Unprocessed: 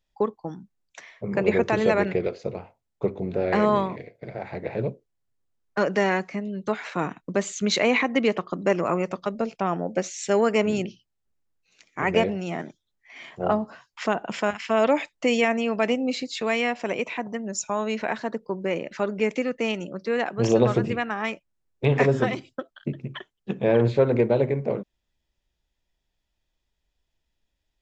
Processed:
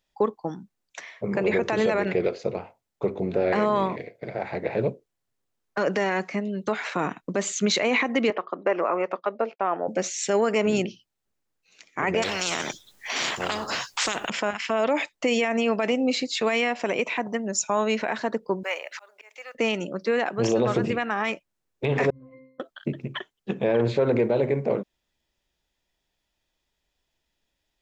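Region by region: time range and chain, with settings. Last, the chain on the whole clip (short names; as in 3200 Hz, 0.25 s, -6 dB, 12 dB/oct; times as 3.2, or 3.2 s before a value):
8.3–9.88 BPF 420–2200 Hz + expander -43 dBFS
12.22–14.3 high shelf 4900 Hz +6 dB + spectral compressor 4:1
18.63–19.55 HPF 700 Hz 24 dB/oct + auto swell 0.725 s + companded quantiser 8-bit
22.1–22.6 compressor 8:1, threshold -32 dBFS + Gaussian blur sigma 1.7 samples + octave resonator C, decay 0.65 s
whole clip: low shelf 130 Hz -10.5 dB; limiter -18 dBFS; gain +4.5 dB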